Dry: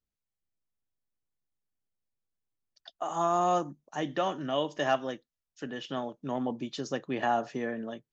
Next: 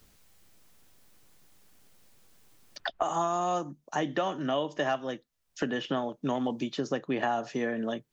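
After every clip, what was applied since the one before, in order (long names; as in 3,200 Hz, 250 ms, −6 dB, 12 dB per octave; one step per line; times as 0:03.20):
multiband upward and downward compressor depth 100%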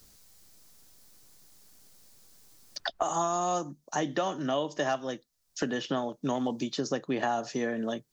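high shelf with overshoot 3,700 Hz +6 dB, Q 1.5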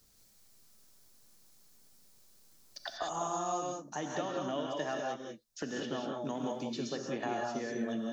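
reverb whose tail is shaped and stops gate 220 ms rising, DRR 0 dB
level −8.5 dB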